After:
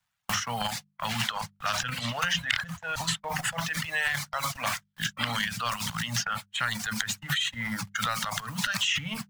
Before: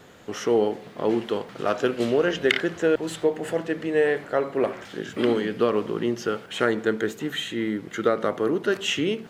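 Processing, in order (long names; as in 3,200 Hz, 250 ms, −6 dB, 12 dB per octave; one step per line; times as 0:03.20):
bit-depth reduction 8 bits, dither none
0:00.61–0:03.19: high-shelf EQ 7,100 Hz −4 dB
noise gate −31 dBFS, range −59 dB
mains-hum notches 50/100/150/200 Hz
transient designer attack −4 dB, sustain +10 dB
Chebyshev band-stop filter 140–990 Hz, order 2
dynamic equaliser 5,600 Hz, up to +7 dB, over −51 dBFS, Q 0.7
reverb reduction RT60 1.2 s
multiband upward and downward compressor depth 100%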